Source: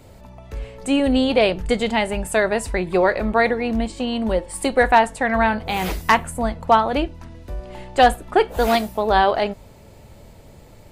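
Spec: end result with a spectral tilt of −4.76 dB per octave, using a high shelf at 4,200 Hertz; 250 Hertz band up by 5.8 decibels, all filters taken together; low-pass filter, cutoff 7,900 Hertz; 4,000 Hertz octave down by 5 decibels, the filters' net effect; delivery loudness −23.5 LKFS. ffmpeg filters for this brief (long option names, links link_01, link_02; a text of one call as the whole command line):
ffmpeg -i in.wav -af "lowpass=7900,equalizer=frequency=250:width_type=o:gain=6.5,equalizer=frequency=4000:width_type=o:gain=-9,highshelf=frequency=4200:gain=3.5,volume=-5.5dB" out.wav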